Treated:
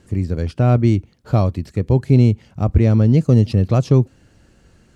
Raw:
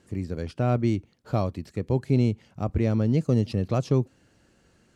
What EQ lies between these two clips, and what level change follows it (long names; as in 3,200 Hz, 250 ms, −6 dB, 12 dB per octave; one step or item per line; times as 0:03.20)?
low-shelf EQ 100 Hz +12 dB
+6.0 dB